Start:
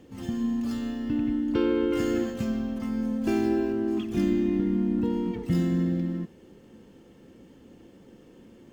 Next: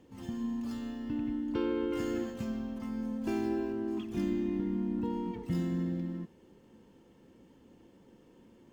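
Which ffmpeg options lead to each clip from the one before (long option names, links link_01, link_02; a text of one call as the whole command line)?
ffmpeg -i in.wav -af "equalizer=frequency=950:width=6.1:gain=7.5,volume=-7.5dB" out.wav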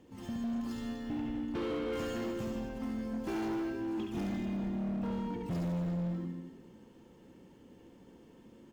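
ffmpeg -i in.wav -filter_complex "[0:a]asplit=2[link_01][link_02];[link_02]aecho=0:1:70|150.5|243.1|349.5|472:0.631|0.398|0.251|0.158|0.1[link_03];[link_01][link_03]amix=inputs=2:normalize=0,asoftclip=type=hard:threshold=-32dB" out.wav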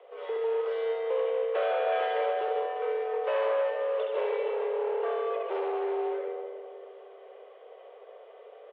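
ffmpeg -i in.wav -filter_complex "[0:a]aeval=exprs='0.0266*(cos(1*acos(clip(val(0)/0.0266,-1,1)))-cos(1*PI/2))+0.00106*(cos(8*acos(clip(val(0)/0.0266,-1,1)))-cos(8*PI/2))':channel_layout=same,highpass=frequency=200:width_type=q:width=0.5412,highpass=frequency=200:width_type=q:width=1.307,lowpass=frequency=3000:width_type=q:width=0.5176,lowpass=frequency=3000:width_type=q:width=0.7071,lowpass=frequency=3000:width_type=q:width=1.932,afreqshift=220,asplit=2[link_01][link_02];[link_02]adelay=315,lowpass=frequency=950:poles=1,volume=-10.5dB,asplit=2[link_03][link_04];[link_04]adelay=315,lowpass=frequency=950:poles=1,volume=0.55,asplit=2[link_05][link_06];[link_06]adelay=315,lowpass=frequency=950:poles=1,volume=0.55,asplit=2[link_07][link_08];[link_08]adelay=315,lowpass=frequency=950:poles=1,volume=0.55,asplit=2[link_09][link_10];[link_10]adelay=315,lowpass=frequency=950:poles=1,volume=0.55,asplit=2[link_11][link_12];[link_12]adelay=315,lowpass=frequency=950:poles=1,volume=0.55[link_13];[link_01][link_03][link_05][link_07][link_09][link_11][link_13]amix=inputs=7:normalize=0,volume=7.5dB" out.wav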